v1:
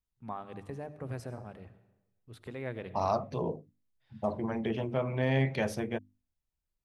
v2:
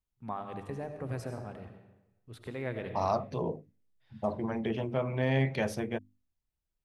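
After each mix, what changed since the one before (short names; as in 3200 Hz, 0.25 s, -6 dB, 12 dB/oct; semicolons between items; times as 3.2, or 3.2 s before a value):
first voice: send +9.5 dB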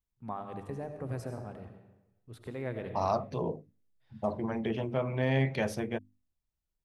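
first voice: add bell 2800 Hz -4.5 dB 2.1 oct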